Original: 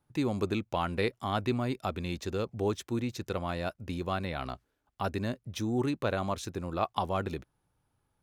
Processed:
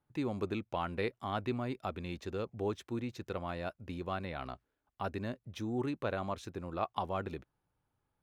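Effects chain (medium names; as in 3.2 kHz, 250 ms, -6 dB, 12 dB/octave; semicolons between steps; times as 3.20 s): tone controls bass -2 dB, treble -8 dB; trim -4.5 dB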